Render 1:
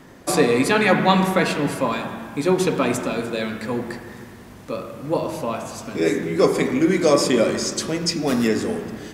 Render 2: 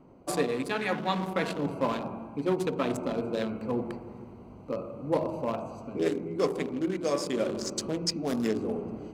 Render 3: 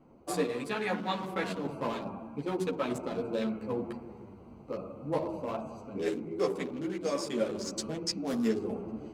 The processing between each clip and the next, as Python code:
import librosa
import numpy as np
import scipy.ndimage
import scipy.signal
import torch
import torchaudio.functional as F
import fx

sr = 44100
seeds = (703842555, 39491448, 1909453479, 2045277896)

y1 = fx.wiener(x, sr, points=25)
y1 = fx.low_shelf(y1, sr, hz=450.0, db=-4.0)
y1 = fx.rider(y1, sr, range_db=5, speed_s=0.5)
y1 = y1 * 10.0 ** (-6.5 / 20.0)
y2 = fx.ensemble(y1, sr)